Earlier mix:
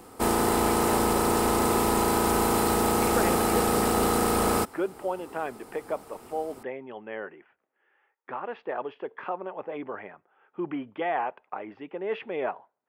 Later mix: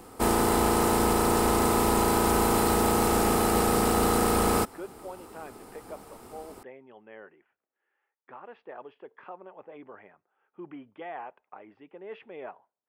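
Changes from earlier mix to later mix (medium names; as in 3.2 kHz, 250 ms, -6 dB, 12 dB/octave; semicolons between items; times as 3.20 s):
speech -11.0 dB; master: add bass shelf 63 Hz +6 dB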